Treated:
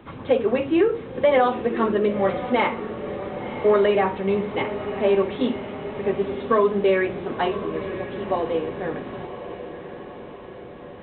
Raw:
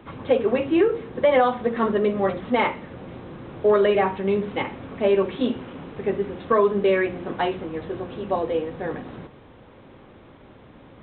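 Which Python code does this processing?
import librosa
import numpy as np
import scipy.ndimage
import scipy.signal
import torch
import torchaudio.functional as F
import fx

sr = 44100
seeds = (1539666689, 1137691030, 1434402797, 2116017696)

y = fx.echo_diffused(x, sr, ms=1027, feedback_pct=57, wet_db=-11)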